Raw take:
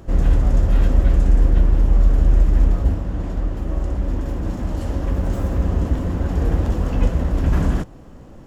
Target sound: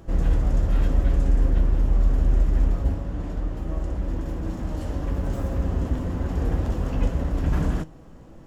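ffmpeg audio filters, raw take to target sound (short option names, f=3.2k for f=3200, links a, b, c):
-af "flanger=delay=6.1:depth=1.8:regen=78:speed=0.24:shape=sinusoidal"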